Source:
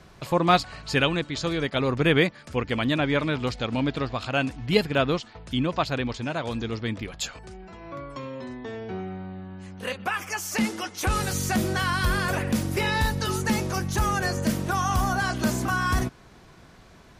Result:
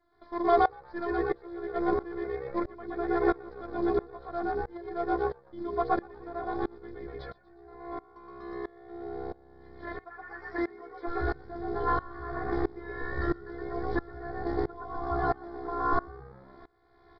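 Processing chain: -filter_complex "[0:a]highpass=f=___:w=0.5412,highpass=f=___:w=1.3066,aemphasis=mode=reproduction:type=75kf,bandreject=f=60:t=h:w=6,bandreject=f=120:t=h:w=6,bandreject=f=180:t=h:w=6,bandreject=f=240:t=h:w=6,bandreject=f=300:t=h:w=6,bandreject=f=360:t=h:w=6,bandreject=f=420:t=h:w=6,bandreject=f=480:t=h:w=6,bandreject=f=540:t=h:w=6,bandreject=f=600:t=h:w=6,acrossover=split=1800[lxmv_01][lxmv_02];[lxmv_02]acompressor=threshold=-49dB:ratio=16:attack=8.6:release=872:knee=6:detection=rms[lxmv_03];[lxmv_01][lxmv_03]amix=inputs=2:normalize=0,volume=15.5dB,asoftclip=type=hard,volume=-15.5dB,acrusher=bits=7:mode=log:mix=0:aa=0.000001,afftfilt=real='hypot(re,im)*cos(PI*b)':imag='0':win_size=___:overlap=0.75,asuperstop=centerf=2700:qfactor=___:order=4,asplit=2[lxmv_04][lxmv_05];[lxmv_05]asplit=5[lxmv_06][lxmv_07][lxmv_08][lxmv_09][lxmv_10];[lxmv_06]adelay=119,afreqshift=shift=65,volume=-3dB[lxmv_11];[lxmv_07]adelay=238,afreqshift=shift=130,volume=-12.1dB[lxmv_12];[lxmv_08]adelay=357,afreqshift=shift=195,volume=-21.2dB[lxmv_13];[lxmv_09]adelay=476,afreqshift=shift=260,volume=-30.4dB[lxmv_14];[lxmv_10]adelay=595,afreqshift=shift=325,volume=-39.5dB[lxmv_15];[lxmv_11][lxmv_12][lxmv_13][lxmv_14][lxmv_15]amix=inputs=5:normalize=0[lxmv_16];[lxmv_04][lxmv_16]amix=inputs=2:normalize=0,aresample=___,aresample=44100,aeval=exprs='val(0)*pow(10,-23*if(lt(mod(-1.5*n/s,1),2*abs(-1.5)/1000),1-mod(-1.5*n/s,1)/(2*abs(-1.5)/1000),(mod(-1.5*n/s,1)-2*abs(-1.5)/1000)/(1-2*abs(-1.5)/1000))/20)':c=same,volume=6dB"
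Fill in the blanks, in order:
66, 66, 512, 2, 11025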